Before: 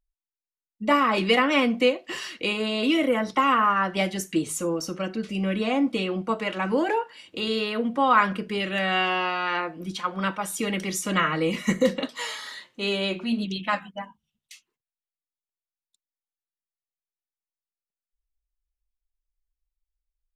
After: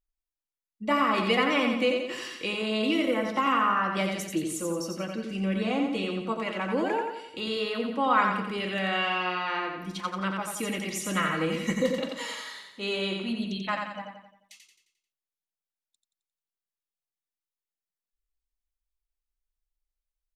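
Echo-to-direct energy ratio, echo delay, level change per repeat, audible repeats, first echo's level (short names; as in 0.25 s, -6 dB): -3.5 dB, 88 ms, -6.5 dB, 5, -4.5 dB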